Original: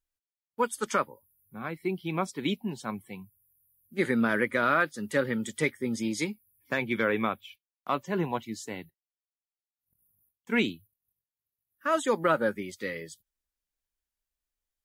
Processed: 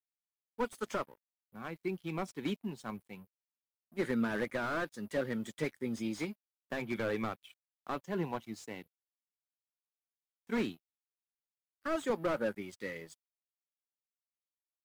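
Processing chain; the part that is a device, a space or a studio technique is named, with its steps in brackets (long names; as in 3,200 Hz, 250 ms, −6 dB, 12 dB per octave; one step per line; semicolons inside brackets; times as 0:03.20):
early transistor amplifier (dead-zone distortion −53.5 dBFS; slew-rate limiting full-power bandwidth 50 Hz)
level −5.5 dB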